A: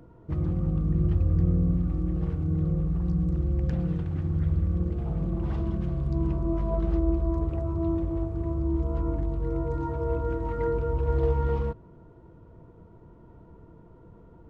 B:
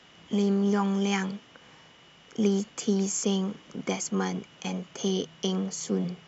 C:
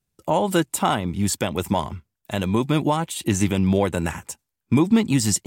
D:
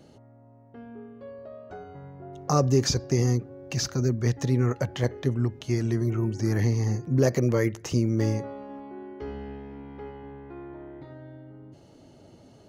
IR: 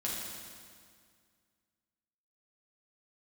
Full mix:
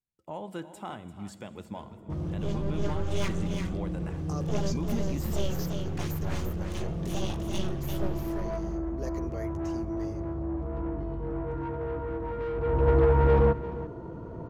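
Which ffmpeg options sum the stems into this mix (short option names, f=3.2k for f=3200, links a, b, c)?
-filter_complex "[0:a]lowshelf=f=320:g=10.5,alimiter=limit=-10dB:level=0:latency=1:release=416,asplit=2[a][b];[b]highpass=f=720:p=1,volume=24dB,asoftclip=type=tanh:threshold=-10dB[c];[a][c]amix=inputs=2:normalize=0,lowpass=f=1.3k:p=1,volume=-6dB,adelay=1800,volume=-2.5dB,afade=t=in:st=12.56:d=0.35:silence=0.251189,asplit=2[d][e];[e]volume=-15.5dB[f];[1:a]flanger=delay=15:depth=4.8:speed=2.7,aeval=exprs='abs(val(0))':c=same,adelay=2100,volume=-2.5dB,asplit=3[g][h][i];[h]volume=-20dB[j];[i]volume=-5dB[k];[2:a]lowpass=f=2.8k:p=1,volume=-19dB,asplit=4[l][m][n][o];[m]volume=-15.5dB[p];[n]volume=-13dB[q];[3:a]highpass=230,adelay=1800,volume=-16.5dB,asplit=2[r][s];[s]volume=-22dB[t];[o]apad=whole_len=369231[u];[g][u]sidechaincompress=threshold=-42dB:ratio=8:attack=5.9:release=165[v];[4:a]atrim=start_sample=2205[w];[j][p][t]amix=inputs=3:normalize=0[x];[x][w]afir=irnorm=-1:irlink=0[y];[f][k][q]amix=inputs=3:normalize=0,aecho=0:1:345:1[z];[d][v][l][r][y][z]amix=inputs=6:normalize=0"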